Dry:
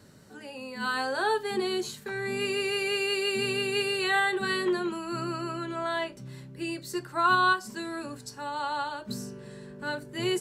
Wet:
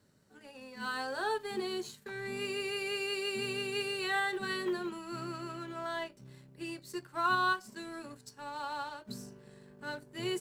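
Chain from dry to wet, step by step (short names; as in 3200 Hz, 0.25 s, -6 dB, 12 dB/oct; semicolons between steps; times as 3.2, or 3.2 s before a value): G.711 law mismatch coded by A; gain -6 dB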